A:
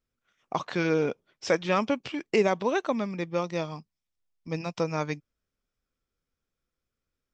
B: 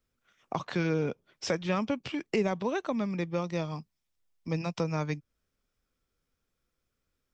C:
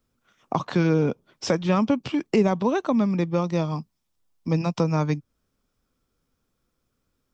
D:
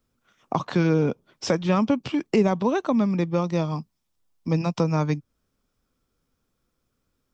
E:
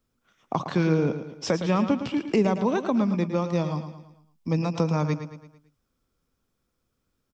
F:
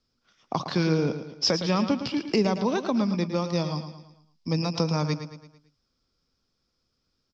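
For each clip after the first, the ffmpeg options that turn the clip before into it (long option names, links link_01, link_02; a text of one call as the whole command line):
ffmpeg -i in.wav -filter_complex "[0:a]acrossover=split=190[link_01][link_02];[link_02]acompressor=threshold=-40dB:ratio=2[link_03];[link_01][link_03]amix=inputs=2:normalize=0,volume=4dB" out.wav
ffmpeg -i in.wav -af "equalizer=frequency=125:width_type=o:width=1:gain=3,equalizer=frequency=250:width_type=o:width=1:gain=5,equalizer=frequency=1000:width_type=o:width=1:gain=4,equalizer=frequency=2000:width_type=o:width=1:gain=-4,volume=5dB" out.wav
ffmpeg -i in.wav -af anull out.wav
ffmpeg -i in.wav -af "aecho=1:1:111|222|333|444|555:0.316|0.145|0.0669|0.0308|0.0142,volume=-2dB" out.wav
ffmpeg -i in.wav -af "lowpass=frequency=5000:width_type=q:width=5.9,volume=-1.5dB" out.wav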